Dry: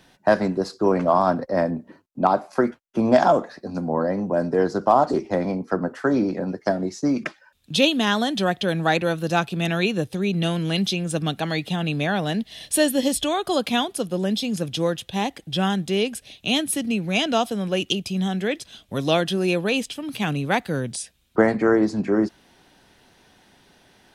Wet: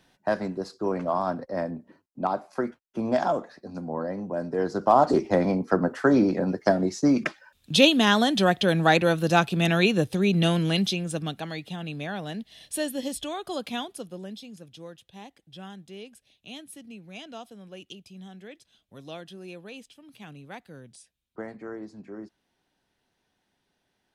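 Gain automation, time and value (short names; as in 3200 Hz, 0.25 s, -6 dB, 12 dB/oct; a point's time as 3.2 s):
4.48 s -8 dB
5.13 s +1 dB
10.56 s +1 dB
11.57 s -10 dB
13.88 s -10 dB
14.61 s -20 dB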